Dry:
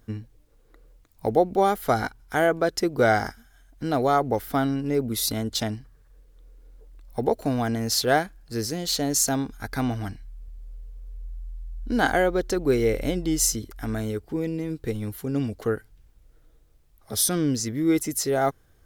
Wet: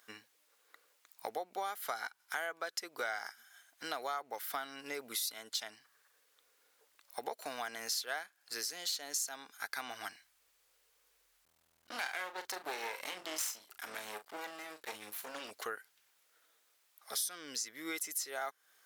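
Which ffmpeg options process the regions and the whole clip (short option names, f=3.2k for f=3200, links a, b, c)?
-filter_complex "[0:a]asettb=1/sr,asplit=3[a][b][c];[a]atrim=end=11.454[d];[b]atrim=start=11.45:end=15.51,asetpts=PTS-STARTPTS,afade=t=in:d=0.004:c=qsin,afade=t=out:st=4.056:d=0.004:c=qsin,aeval=exprs='max(val(0),0)':c=same,asplit=2[e][f];[f]adelay=38,volume=-11dB[g];[e][g]amix=inputs=2:normalize=0,atrim=end_sample=179046[h];[c]atrim=start=15.506[i];[d][h]acrossfade=d=0.004:c1=hsin:c2=qsin[j];[j][i]acrossfade=d=0.004:c1=qsin:c2=hsin,highpass=1.2k,acompressor=threshold=-41dB:ratio=4,volume=3.5dB"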